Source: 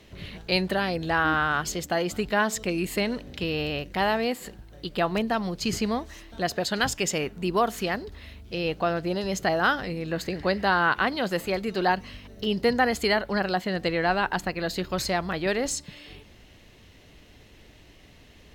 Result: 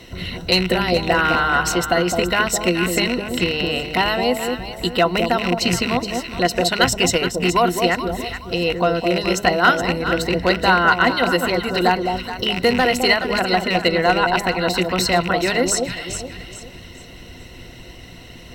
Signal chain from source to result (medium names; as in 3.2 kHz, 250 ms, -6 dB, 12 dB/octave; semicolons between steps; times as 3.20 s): rattle on loud lows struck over -31 dBFS, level -19 dBFS; rippled EQ curve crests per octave 2, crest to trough 12 dB; in parallel at +2 dB: compression 6:1, threshold -35 dBFS, peak gain reduction 19 dB; on the sum: hard clipper -9.5 dBFS, distortion -30 dB; on a send: echo whose repeats swap between lows and highs 211 ms, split 870 Hz, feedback 57%, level -4 dB; on the sum: harmonic-percussive split percussive +6 dB